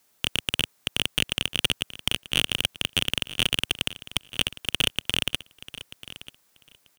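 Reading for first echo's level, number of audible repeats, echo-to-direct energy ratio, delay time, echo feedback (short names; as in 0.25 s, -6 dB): -16.0 dB, 2, -16.0 dB, 0.938 s, 16%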